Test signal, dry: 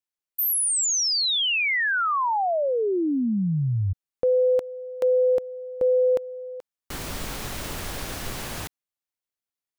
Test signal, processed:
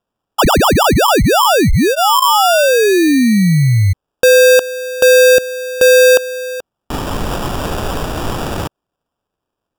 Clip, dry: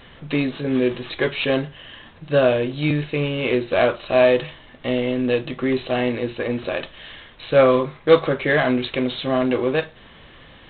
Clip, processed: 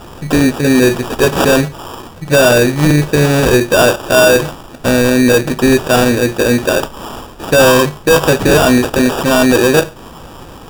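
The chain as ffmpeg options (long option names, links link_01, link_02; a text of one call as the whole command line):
ffmpeg -i in.wav -af "apsyclip=16.5dB,bandreject=frequency=1500:width=9.8,acrusher=samples=21:mix=1:aa=0.000001,volume=-3.5dB" out.wav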